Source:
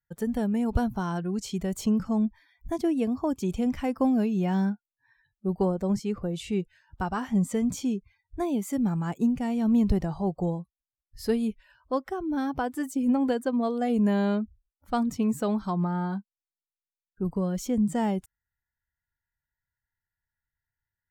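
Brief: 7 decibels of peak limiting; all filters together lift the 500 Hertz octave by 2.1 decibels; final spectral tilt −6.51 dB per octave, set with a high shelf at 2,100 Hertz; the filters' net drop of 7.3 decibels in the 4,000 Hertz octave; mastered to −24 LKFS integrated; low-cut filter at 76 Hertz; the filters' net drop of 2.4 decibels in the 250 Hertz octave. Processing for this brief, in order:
high-pass filter 76 Hz
parametric band 250 Hz −3.5 dB
parametric band 500 Hz +4 dB
high-shelf EQ 2,100 Hz −5.5 dB
parametric band 4,000 Hz −4.5 dB
level +6 dB
brickwall limiter −14 dBFS

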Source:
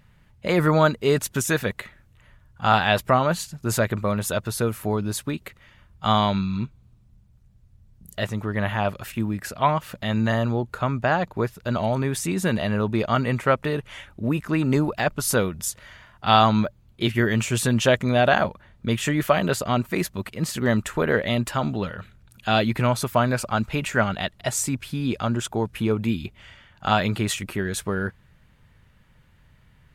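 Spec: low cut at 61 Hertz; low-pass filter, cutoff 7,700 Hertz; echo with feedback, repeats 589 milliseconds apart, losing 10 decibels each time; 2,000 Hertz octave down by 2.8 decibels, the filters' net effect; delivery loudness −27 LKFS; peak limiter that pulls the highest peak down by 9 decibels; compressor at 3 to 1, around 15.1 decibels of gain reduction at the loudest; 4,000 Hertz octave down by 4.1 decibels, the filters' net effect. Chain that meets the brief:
high-pass filter 61 Hz
low-pass filter 7,700 Hz
parametric band 2,000 Hz −3 dB
parametric band 4,000 Hz −4 dB
downward compressor 3 to 1, threshold −34 dBFS
brickwall limiter −26 dBFS
repeating echo 589 ms, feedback 32%, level −10 dB
level +10 dB

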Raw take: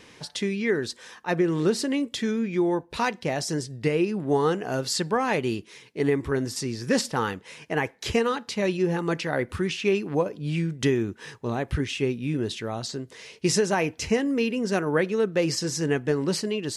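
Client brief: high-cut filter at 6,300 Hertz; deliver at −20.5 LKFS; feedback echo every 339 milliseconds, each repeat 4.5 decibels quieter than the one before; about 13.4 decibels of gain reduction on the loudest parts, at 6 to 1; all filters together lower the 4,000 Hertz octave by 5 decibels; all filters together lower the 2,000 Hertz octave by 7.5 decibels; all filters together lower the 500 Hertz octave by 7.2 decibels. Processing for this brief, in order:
low-pass filter 6,300 Hz
parametric band 500 Hz −9 dB
parametric band 2,000 Hz −8.5 dB
parametric band 4,000 Hz −3 dB
downward compressor 6 to 1, threshold −36 dBFS
repeating echo 339 ms, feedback 60%, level −4.5 dB
level +17.5 dB

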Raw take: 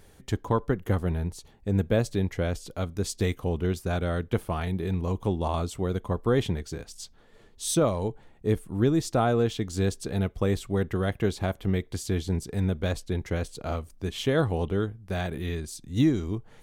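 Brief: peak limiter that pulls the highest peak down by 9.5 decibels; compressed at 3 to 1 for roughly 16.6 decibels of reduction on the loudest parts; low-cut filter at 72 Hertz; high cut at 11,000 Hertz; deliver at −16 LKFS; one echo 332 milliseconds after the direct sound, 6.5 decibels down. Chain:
high-pass filter 72 Hz
low-pass filter 11,000 Hz
downward compressor 3 to 1, threshold −42 dBFS
brickwall limiter −34.5 dBFS
single-tap delay 332 ms −6.5 dB
level +29.5 dB

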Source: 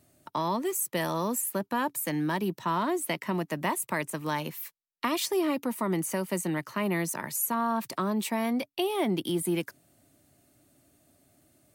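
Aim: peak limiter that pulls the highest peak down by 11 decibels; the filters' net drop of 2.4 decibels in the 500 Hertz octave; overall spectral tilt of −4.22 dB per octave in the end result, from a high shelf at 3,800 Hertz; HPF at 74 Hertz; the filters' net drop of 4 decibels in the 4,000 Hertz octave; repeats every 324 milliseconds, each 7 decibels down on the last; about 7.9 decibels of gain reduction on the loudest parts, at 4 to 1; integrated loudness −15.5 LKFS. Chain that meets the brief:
high-pass filter 74 Hz
parametric band 500 Hz −3.5 dB
high-shelf EQ 3,800 Hz −4 dB
parametric band 4,000 Hz −3 dB
downward compressor 4 to 1, threshold −35 dBFS
brickwall limiter −31 dBFS
repeating echo 324 ms, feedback 45%, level −7 dB
level +24 dB

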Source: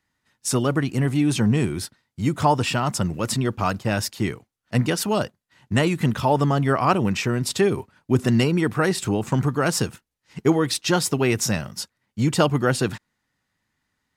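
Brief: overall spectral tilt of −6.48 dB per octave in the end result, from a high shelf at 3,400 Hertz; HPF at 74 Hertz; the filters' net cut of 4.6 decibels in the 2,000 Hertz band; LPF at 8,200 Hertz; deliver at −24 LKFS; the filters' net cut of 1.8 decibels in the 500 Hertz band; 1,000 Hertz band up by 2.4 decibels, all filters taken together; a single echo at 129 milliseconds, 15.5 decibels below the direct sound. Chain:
high-pass filter 74 Hz
low-pass filter 8,200 Hz
parametric band 500 Hz −3.5 dB
parametric band 1,000 Hz +6.5 dB
parametric band 2,000 Hz −6.5 dB
high-shelf EQ 3,400 Hz −8.5 dB
single-tap delay 129 ms −15.5 dB
level −1 dB

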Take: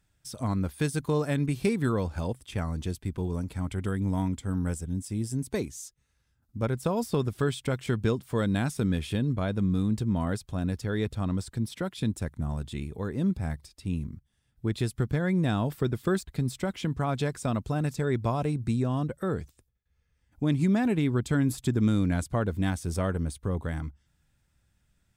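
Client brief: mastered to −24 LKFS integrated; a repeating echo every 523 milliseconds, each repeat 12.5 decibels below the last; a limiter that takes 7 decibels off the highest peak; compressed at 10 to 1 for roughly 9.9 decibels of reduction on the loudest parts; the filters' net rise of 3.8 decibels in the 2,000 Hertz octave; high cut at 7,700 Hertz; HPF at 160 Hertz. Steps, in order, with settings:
high-pass filter 160 Hz
low-pass filter 7,700 Hz
parametric band 2,000 Hz +5 dB
downward compressor 10 to 1, threshold −32 dBFS
brickwall limiter −27 dBFS
repeating echo 523 ms, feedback 24%, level −12.5 dB
level +15 dB

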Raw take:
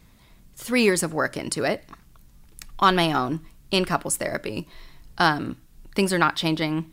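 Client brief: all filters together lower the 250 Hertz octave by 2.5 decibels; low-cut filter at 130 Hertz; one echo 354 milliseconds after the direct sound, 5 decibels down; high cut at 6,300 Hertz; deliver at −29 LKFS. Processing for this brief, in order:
high-pass filter 130 Hz
low-pass filter 6,300 Hz
parametric band 250 Hz −3 dB
single-tap delay 354 ms −5 dB
level −5 dB

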